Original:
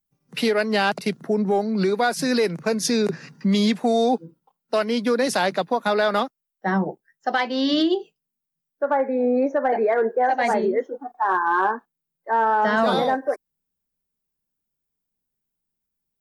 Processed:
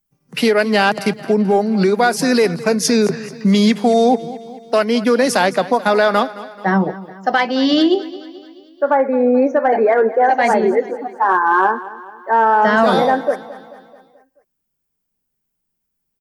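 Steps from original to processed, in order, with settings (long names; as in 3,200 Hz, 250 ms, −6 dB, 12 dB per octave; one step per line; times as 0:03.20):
parametric band 3,800 Hz −5 dB 0.25 octaves
repeating echo 217 ms, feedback 53%, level −17 dB
level +6.5 dB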